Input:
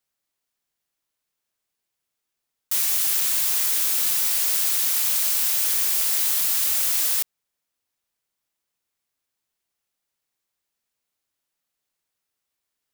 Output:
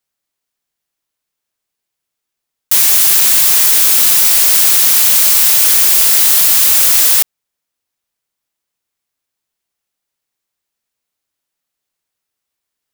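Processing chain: waveshaping leveller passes 2; trim +7 dB

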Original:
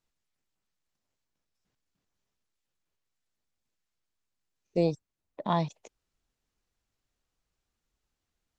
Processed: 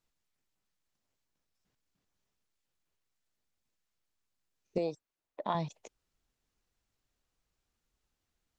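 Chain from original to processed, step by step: 4.78–5.55 s: tone controls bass -13 dB, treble -4 dB; compression, threshold -28 dBFS, peak gain reduction 6.5 dB

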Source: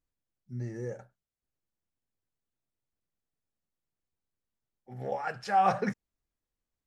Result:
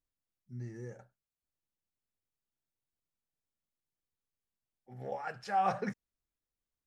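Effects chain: 0.52–0.96 s: peaking EQ 570 Hz -8.5 dB 0.61 oct; trim -5.5 dB

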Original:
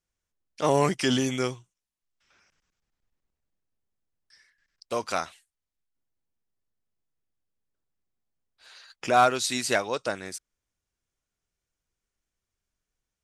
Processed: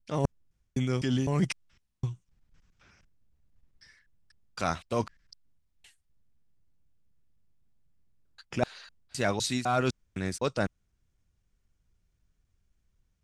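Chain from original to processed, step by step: slices played last to first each 254 ms, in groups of 3; tone controls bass +14 dB, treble -1 dB; reverse; compression 12:1, threshold -26 dBFS, peak gain reduction 14.5 dB; reverse; treble shelf 11 kHz -8.5 dB; trim +2.5 dB

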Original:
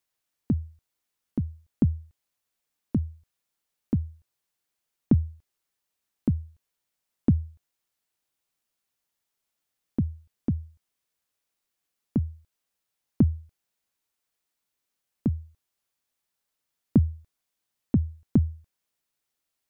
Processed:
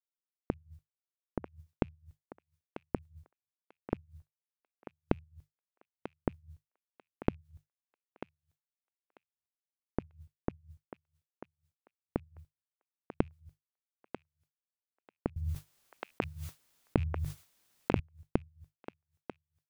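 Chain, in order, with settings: rattle on loud lows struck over -21 dBFS, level -22 dBFS; hum notches 50/100/150 Hz; expander -43 dBFS; bass shelf 320 Hz +3 dB; inverted gate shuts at -24 dBFS, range -34 dB; thinning echo 942 ms, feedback 19%, high-pass 710 Hz, level -6.5 dB; 15.36–18.00 s: level flattener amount 70%; trim +3 dB

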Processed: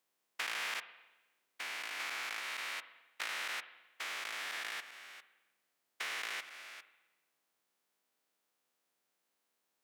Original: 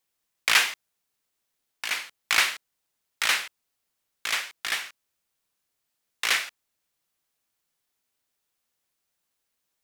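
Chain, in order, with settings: spectrogram pixelated in time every 400 ms; high-pass 230 Hz 12 dB/octave; treble shelf 2.1 kHz -7.5 dB; compression 3:1, threshold -43 dBFS, peak gain reduction 11 dB; spring tank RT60 1.1 s, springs 44/54 ms, chirp 80 ms, DRR 12.5 dB; trim +4 dB

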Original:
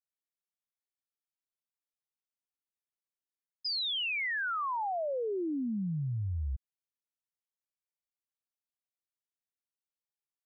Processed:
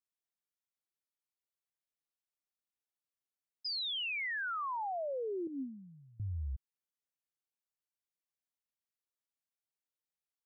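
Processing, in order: 5.47–6.20 s: vowel filter i; trim -4 dB

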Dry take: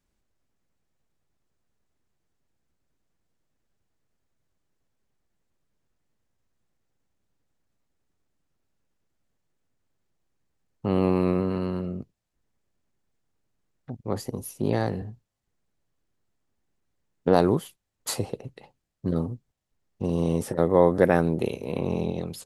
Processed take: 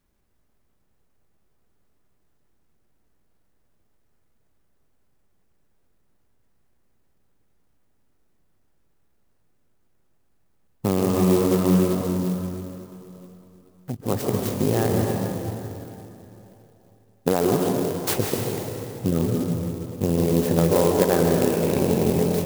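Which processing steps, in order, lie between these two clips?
compression 6:1, threshold -23 dBFS, peak gain reduction 10.5 dB; reverberation RT60 3.2 s, pre-delay 123 ms, DRR 0 dB; sampling jitter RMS 0.067 ms; trim +6 dB

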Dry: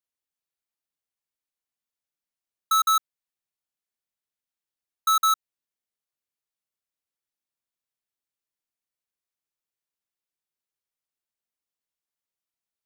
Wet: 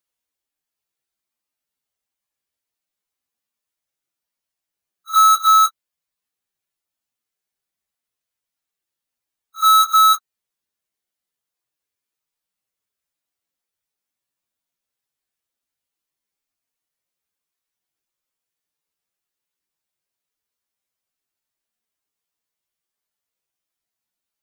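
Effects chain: pre-echo 33 ms -17 dB; plain phase-vocoder stretch 1.9×; trim +8.5 dB

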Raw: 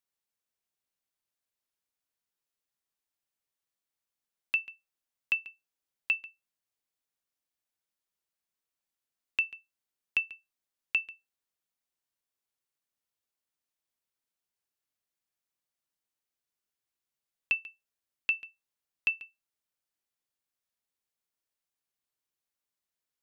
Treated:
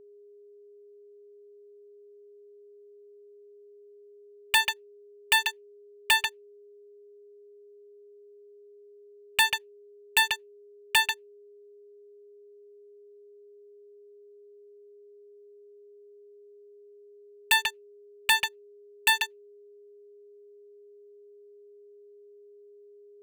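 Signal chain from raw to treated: cycle switcher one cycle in 3, inverted; waveshaping leveller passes 5; whistle 410 Hz -50 dBFS

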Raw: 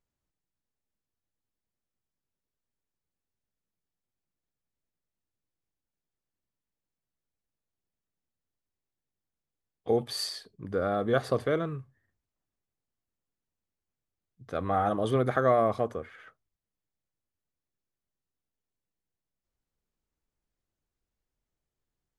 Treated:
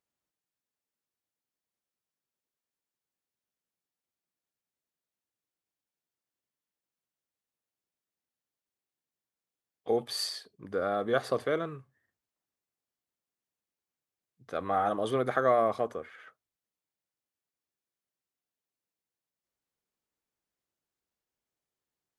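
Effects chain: high-pass 340 Hz 6 dB/octave

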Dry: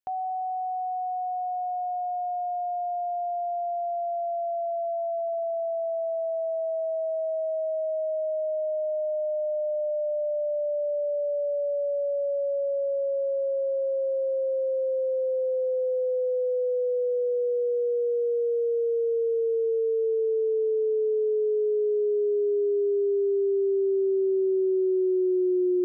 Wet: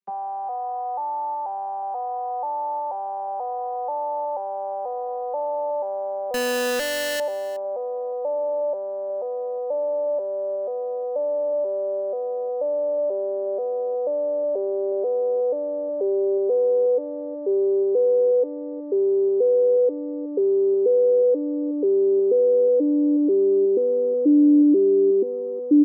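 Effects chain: vocoder on a broken chord major triad, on G3, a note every 485 ms; 6.34–7.20 s: Schmitt trigger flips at -49.5 dBFS; peaking EQ 650 Hz -11.5 dB 0.28 oct; delay 366 ms -18 dB; trim +7 dB

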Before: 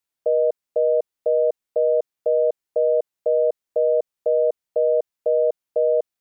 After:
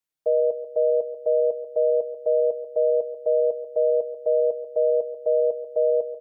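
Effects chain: comb 6.4 ms; feedback delay 138 ms, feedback 42%, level -11.5 dB; trim -5.5 dB

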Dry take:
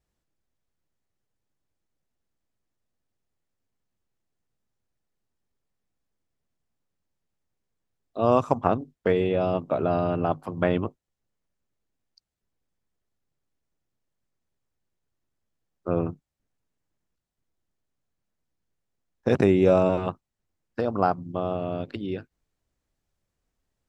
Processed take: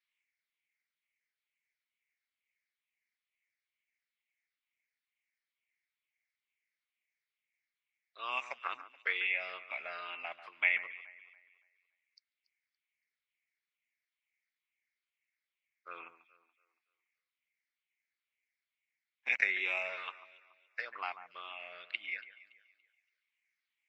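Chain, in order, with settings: drifting ripple filter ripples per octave 0.6, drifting -2.2 Hz, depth 10 dB; ladder band-pass 2.3 kHz, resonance 80%; echo whose repeats swap between lows and highs 142 ms, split 2.1 kHz, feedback 55%, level -12.5 dB; trim +8.5 dB; Vorbis 48 kbps 22.05 kHz

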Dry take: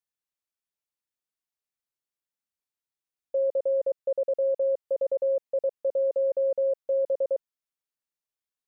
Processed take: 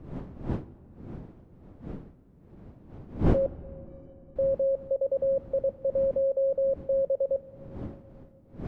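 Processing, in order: wind noise 250 Hz -37 dBFS; 3.46–4.36 s: inharmonic resonator 350 Hz, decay 0.45 s, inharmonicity 0.03; on a send: reverberation RT60 3.3 s, pre-delay 6 ms, DRR 17 dB

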